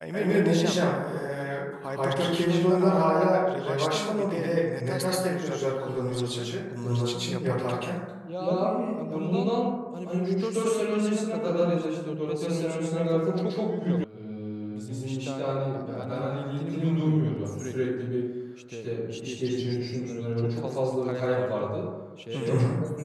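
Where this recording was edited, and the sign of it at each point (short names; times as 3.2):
14.04 sound cut off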